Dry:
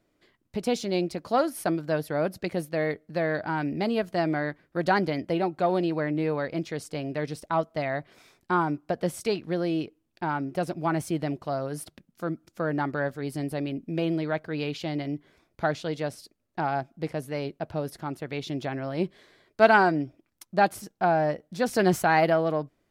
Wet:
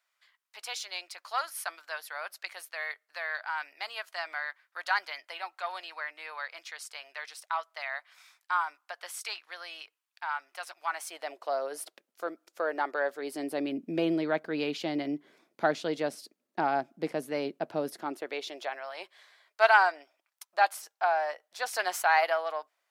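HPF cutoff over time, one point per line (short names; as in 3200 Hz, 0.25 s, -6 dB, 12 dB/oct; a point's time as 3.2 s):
HPF 24 dB/oct
10.86 s 1000 Hz
11.57 s 440 Hz
13 s 440 Hz
13.8 s 210 Hz
17.86 s 210 Hz
18.87 s 740 Hz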